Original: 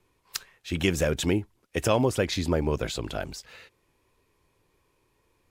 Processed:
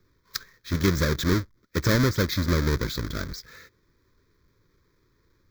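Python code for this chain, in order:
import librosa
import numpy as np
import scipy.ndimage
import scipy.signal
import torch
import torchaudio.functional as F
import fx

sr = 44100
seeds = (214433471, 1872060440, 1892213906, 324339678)

y = fx.halfwave_hold(x, sr)
y = fx.fixed_phaser(y, sr, hz=2800.0, stages=6)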